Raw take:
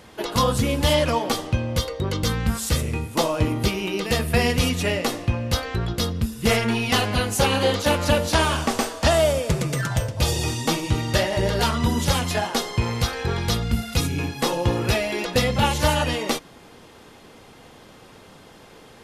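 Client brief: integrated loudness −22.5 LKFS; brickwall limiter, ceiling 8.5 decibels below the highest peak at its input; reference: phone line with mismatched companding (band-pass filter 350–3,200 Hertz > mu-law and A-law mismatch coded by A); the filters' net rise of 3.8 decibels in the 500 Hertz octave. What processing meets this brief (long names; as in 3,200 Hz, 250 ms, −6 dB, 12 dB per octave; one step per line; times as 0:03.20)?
parametric band 500 Hz +5.5 dB
brickwall limiter −13 dBFS
band-pass filter 350–3,200 Hz
mu-law and A-law mismatch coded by A
level +4.5 dB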